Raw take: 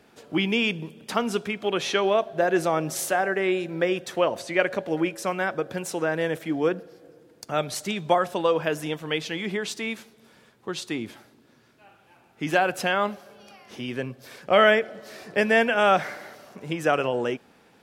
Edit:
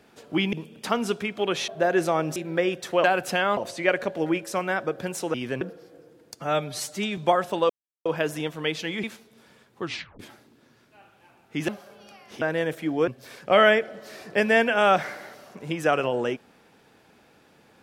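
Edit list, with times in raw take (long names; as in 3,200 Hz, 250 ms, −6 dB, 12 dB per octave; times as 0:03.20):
0:00.53–0:00.78: remove
0:01.93–0:02.26: remove
0:02.94–0:03.60: remove
0:06.05–0:06.71: swap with 0:13.81–0:14.08
0:07.45–0:08.00: time-stretch 1.5×
0:08.52: splice in silence 0.36 s
0:09.50–0:09.90: remove
0:10.69: tape stop 0.37 s
0:12.55–0:13.08: move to 0:04.28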